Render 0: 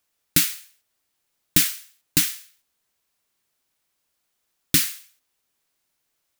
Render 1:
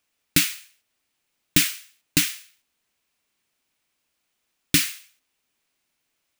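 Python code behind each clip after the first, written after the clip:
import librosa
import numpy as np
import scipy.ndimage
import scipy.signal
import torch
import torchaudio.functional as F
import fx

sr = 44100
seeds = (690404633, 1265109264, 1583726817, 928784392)

y = fx.graphic_eq_15(x, sr, hz=(250, 2500, 16000), db=(4, 5, -6))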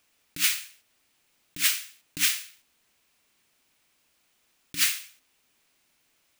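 y = fx.over_compress(x, sr, threshold_db=-25.0, ratio=-0.5)
y = y * librosa.db_to_amplitude(1.5)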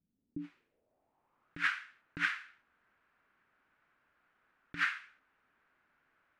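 y = fx.filter_sweep_lowpass(x, sr, from_hz=180.0, to_hz=1500.0, start_s=0.0, end_s=1.57, q=3.5)
y = y * librosa.db_to_amplitude(-3.5)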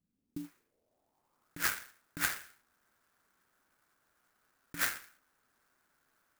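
y = fx.clock_jitter(x, sr, seeds[0], jitter_ms=0.078)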